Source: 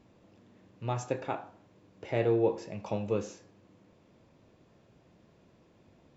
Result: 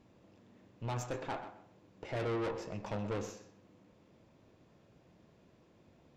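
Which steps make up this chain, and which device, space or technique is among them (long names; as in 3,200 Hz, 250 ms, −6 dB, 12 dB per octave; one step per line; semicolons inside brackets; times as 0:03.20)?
rockabilly slapback (tube saturation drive 35 dB, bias 0.75; tape delay 126 ms, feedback 23%, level −10 dB, low-pass 3,900 Hz)
level +2 dB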